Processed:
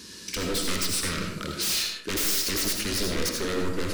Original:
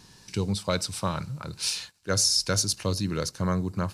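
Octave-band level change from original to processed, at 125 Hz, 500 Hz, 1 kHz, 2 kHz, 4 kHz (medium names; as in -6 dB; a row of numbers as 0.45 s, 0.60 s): -7.0 dB, 0.0 dB, -2.5 dB, +5.0 dB, +1.0 dB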